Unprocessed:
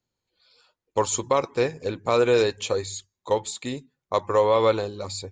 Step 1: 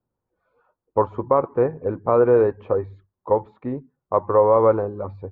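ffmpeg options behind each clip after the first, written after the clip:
ffmpeg -i in.wav -af "lowpass=frequency=1300:width=0.5412,lowpass=frequency=1300:width=1.3066,volume=4dB" out.wav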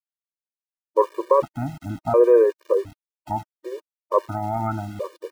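ffmpeg -i in.wav -af "aeval=exprs='val(0)*gte(abs(val(0)),0.0141)':channel_layout=same,afftfilt=real='re*gt(sin(2*PI*0.7*pts/sr)*(1-2*mod(floor(b*sr/1024/310),2)),0)':imag='im*gt(sin(2*PI*0.7*pts/sr)*(1-2*mod(floor(b*sr/1024/310),2)),0)':win_size=1024:overlap=0.75,volume=1.5dB" out.wav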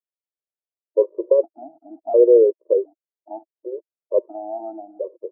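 ffmpeg -i in.wav -af "asuperpass=centerf=480:order=8:qfactor=1.3,volume=2.5dB" out.wav

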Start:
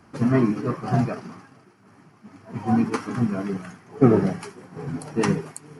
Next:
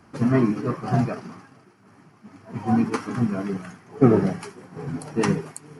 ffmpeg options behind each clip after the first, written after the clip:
ffmpeg -i in.wav -af anull out.wav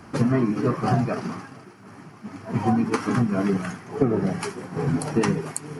ffmpeg -i in.wav -af "acompressor=threshold=-26dB:ratio=12,volume=8.5dB" out.wav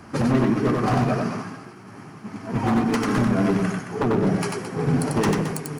ffmpeg -i in.wav -filter_complex "[0:a]aeval=exprs='0.15*(abs(mod(val(0)/0.15+3,4)-2)-1)':channel_layout=same,asplit=2[link_01][link_02];[link_02]aecho=0:1:93.29|218.7:0.708|0.316[link_03];[link_01][link_03]amix=inputs=2:normalize=0,volume=1dB" out.wav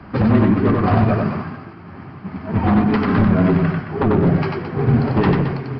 ffmpeg -i in.wav -af "bass=frequency=250:gain=3,treble=frequency=4000:gain=-11,afreqshift=-20,aresample=11025,aresample=44100,volume=4dB" out.wav

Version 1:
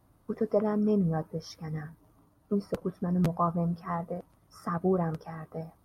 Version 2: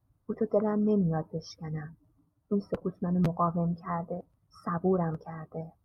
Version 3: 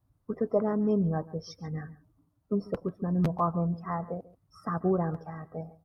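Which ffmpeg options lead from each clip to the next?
ffmpeg -i in.wav -af "afftdn=noise_reduction=15:noise_floor=-50" out.wav
ffmpeg -i in.wav -af "aecho=1:1:141:0.106" out.wav

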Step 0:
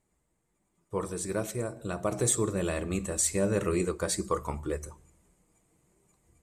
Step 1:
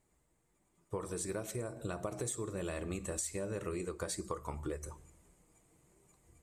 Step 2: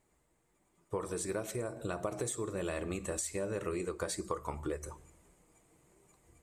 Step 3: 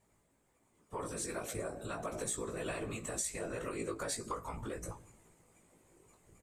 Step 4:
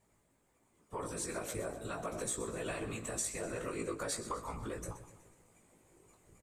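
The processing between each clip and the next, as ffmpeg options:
ffmpeg -i in.wav -af "equalizer=frequency=200:width_type=o:width=0.28:gain=-4.5,acompressor=threshold=-36dB:ratio=12,volume=1dB" out.wav
ffmpeg -i in.wav -af "bass=frequency=250:gain=-4,treble=frequency=4000:gain=-3,volume=3.5dB" out.wav
ffmpeg -i in.wav -filter_complex "[0:a]acrossover=split=840[link_01][link_02];[link_01]alimiter=level_in=11dB:limit=-24dB:level=0:latency=1,volume=-11dB[link_03];[link_03][link_02]amix=inputs=2:normalize=0,afftfilt=real='hypot(re,im)*cos(2*PI*random(0))':imag='hypot(re,im)*sin(2*PI*random(1))':win_size=512:overlap=0.75,asplit=2[link_04][link_05];[link_05]adelay=18,volume=-4.5dB[link_06];[link_04][link_06]amix=inputs=2:normalize=0,volume=5.5dB" out.wav
ffmpeg -i in.wav -af "aecho=1:1:125|250|375|500|625:0.211|0.11|0.0571|0.0297|0.0155" out.wav

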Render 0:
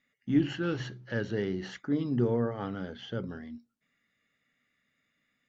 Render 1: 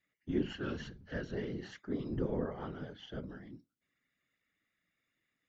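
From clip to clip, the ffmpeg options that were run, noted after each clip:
ffmpeg -i in.wav -af "afftfilt=real='hypot(re,im)*cos(2*PI*random(0))':imag='hypot(re,im)*sin(2*PI*random(1))':win_size=512:overlap=0.75,volume=-1dB" out.wav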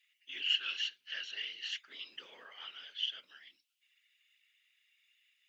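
ffmpeg -i in.wav -af "highpass=frequency=2800:width_type=q:width=4.8,volume=6.5dB" out.wav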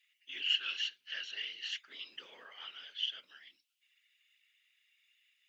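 ffmpeg -i in.wav -af anull out.wav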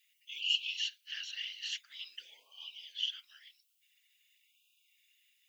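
ffmpeg -i in.wav -af "aderivative,afftfilt=real='re*(1-between(b*sr/1024,260*pow(1700/260,0.5+0.5*sin(2*PI*0.48*pts/sr))/1.41,260*pow(1700/260,0.5+0.5*sin(2*PI*0.48*pts/sr))*1.41))':imag='im*(1-between(b*sr/1024,260*pow(1700/260,0.5+0.5*sin(2*PI*0.48*pts/sr))/1.41,260*pow(1700/260,0.5+0.5*sin(2*PI*0.48*pts/sr))*1.41))':win_size=1024:overlap=0.75,volume=8dB" out.wav

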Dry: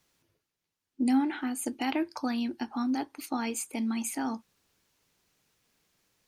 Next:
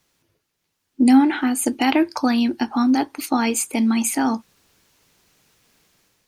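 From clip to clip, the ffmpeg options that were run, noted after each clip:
ffmpeg -i in.wav -af "dynaudnorm=framelen=200:gausssize=5:maxgain=7dB,volume=5dB" out.wav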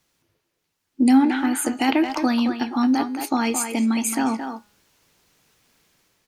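ffmpeg -i in.wav -filter_complex "[0:a]bandreject=frequency=207.6:width_type=h:width=4,bandreject=frequency=415.2:width_type=h:width=4,bandreject=frequency=622.8:width_type=h:width=4,bandreject=frequency=830.4:width_type=h:width=4,bandreject=frequency=1038:width_type=h:width=4,bandreject=frequency=1245.6:width_type=h:width=4,bandreject=frequency=1453.2:width_type=h:width=4,bandreject=frequency=1660.8:width_type=h:width=4,bandreject=frequency=1868.4:width_type=h:width=4,bandreject=frequency=2076:width_type=h:width=4,bandreject=frequency=2283.6:width_type=h:width=4,bandreject=frequency=2491.2:width_type=h:width=4,bandreject=frequency=2698.8:width_type=h:width=4,bandreject=frequency=2906.4:width_type=h:width=4,bandreject=frequency=3114:width_type=h:width=4,bandreject=frequency=3321.6:width_type=h:width=4,bandreject=frequency=3529.2:width_type=h:width=4,bandreject=frequency=3736.8:width_type=h:width=4,bandreject=frequency=3944.4:width_type=h:width=4,bandreject=frequency=4152:width_type=h:width=4,bandreject=frequency=4359.6:width_type=h:width=4,bandreject=frequency=4567.2:width_type=h:width=4,bandreject=frequency=4774.8:width_type=h:width=4,bandreject=frequency=4982.4:width_type=h:width=4,bandreject=frequency=5190:width_type=h:width=4,bandreject=frequency=5397.6:width_type=h:width=4,bandreject=frequency=5605.2:width_type=h:width=4,bandreject=frequency=5812.8:width_type=h:width=4,bandreject=frequency=6020.4:width_type=h:width=4,bandreject=frequency=6228:width_type=h:width=4,bandreject=frequency=6435.6:width_type=h:width=4,bandreject=frequency=6643.2:width_type=h:width=4,bandreject=frequency=6850.8:width_type=h:width=4,bandreject=frequency=7058.4:width_type=h:width=4,bandreject=frequency=7266:width_type=h:width=4,bandreject=frequency=7473.6:width_type=h:width=4,bandreject=frequency=7681.2:width_type=h:width=4,bandreject=frequency=7888.8:width_type=h:width=4,asplit=2[link_01][link_02];[link_02]adelay=220,highpass=300,lowpass=3400,asoftclip=type=hard:threshold=-14dB,volume=-6dB[link_03];[link_01][link_03]amix=inputs=2:normalize=0,volume=-2dB" out.wav

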